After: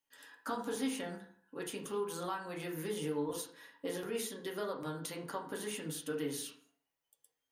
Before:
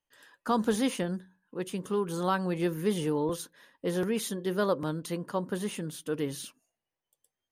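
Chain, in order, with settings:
spectral tilt +2 dB per octave
downward compressor, threshold −35 dBFS, peak gain reduction 12 dB
convolution reverb RT60 0.55 s, pre-delay 4 ms, DRR −1.5 dB
level −4 dB

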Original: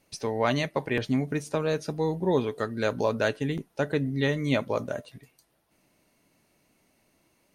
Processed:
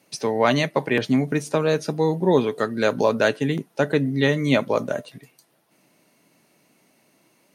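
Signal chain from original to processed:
high-pass filter 130 Hz 24 dB per octave
level +6.5 dB

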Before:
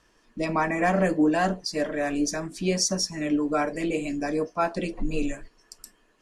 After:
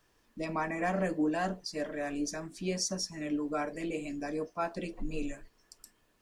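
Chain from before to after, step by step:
background noise pink −66 dBFS
level −8.5 dB

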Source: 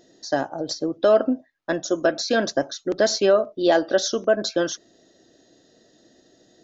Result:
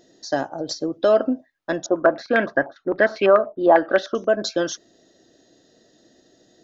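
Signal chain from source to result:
0:01.86–0:04.15: low-pass on a step sequencer 10 Hz 870–2,300 Hz

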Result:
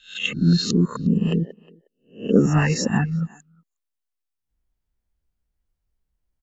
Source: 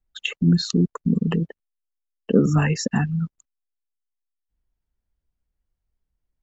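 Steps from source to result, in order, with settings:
peak hold with a rise ahead of every peak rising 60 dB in 0.36 s
0:01.06–0:02.36: flat-topped bell 1,300 Hz −12 dB
far-end echo of a speakerphone 360 ms, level −22 dB

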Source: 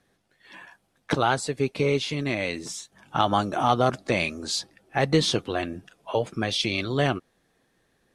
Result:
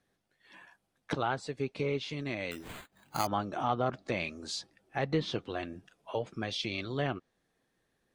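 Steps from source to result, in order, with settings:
treble cut that deepens with the level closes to 2,700 Hz, closed at −17 dBFS
0:02.51–0:03.27: bad sample-rate conversion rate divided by 8×, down none, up hold
level −9 dB

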